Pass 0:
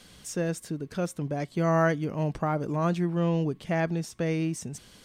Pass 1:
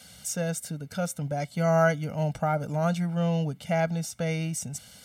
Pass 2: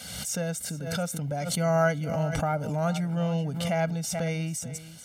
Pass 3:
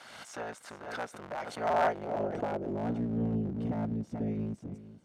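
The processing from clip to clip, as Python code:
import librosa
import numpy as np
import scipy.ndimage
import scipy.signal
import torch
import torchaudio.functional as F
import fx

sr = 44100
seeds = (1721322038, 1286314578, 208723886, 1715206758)

y1 = scipy.signal.sosfilt(scipy.signal.butter(2, 75.0, 'highpass', fs=sr, output='sos'), x)
y1 = fx.high_shelf(y1, sr, hz=6200.0, db=9.5)
y1 = y1 + 0.9 * np.pad(y1, (int(1.4 * sr / 1000.0), 0))[:len(y1)]
y1 = y1 * librosa.db_to_amplitude(-2.0)
y2 = y1 + 10.0 ** (-15.0 / 20.0) * np.pad(y1, (int(435 * sr / 1000.0), 0))[:len(y1)]
y2 = fx.pre_swell(y2, sr, db_per_s=38.0)
y2 = y2 * librosa.db_to_amplitude(-1.5)
y3 = fx.cycle_switch(y2, sr, every=3, mode='inverted')
y3 = fx.dynamic_eq(y3, sr, hz=1100.0, q=2.8, threshold_db=-43.0, ratio=4.0, max_db=-5)
y3 = fx.filter_sweep_bandpass(y3, sr, from_hz=1100.0, to_hz=210.0, start_s=1.44, end_s=3.29, q=1.2)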